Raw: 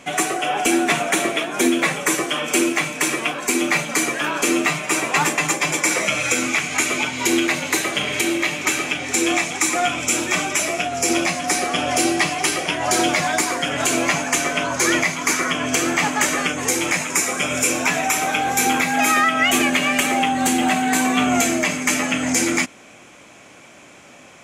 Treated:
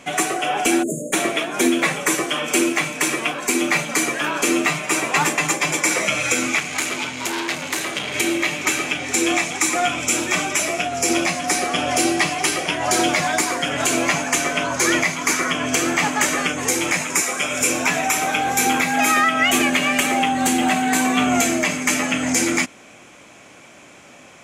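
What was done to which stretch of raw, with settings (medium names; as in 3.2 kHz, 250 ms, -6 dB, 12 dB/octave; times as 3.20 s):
0.83–1.13 s: spectral selection erased 650–6400 Hz
6.60–8.15 s: transformer saturation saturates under 3.6 kHz
17.21–17.61 s: bass shelf 260 Hz -9 dB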